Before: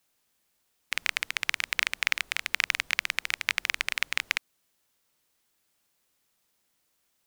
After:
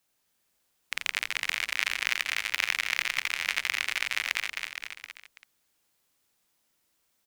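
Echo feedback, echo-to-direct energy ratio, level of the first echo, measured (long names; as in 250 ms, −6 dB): repeats not evenly spaced, −0.5 dB, −20.0 dB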